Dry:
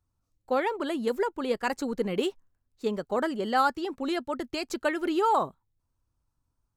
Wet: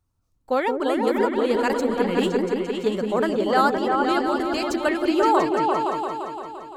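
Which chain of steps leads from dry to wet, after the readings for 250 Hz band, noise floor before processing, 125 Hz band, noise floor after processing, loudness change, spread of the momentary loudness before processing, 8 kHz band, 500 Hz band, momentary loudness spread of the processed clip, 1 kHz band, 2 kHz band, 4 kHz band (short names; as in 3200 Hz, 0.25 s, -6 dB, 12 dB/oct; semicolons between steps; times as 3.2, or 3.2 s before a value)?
+8.5 dB, -80 dBFS, +8.5 dB, -68 dBFS, +7.0 dB, 8 LU, +5.0 dB, +8.0 dB, 6 LU, +7.0 dB, +6.5 dB, +5.5 dB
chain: vibrato 6.6 Hz 16 cents; repeats that get brighter 0.172 s, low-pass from 400 Hz, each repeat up 2 oct, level 0 dB; gain +4 dB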